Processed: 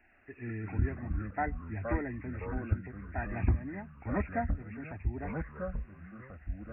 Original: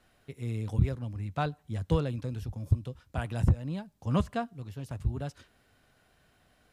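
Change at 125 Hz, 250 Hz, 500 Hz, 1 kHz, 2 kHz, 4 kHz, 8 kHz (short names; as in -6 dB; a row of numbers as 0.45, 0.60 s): -5.5 dB, -2.5 dB, -2.5 dB, 0.0 dB, +4.0 dB, under -25 dB, n/a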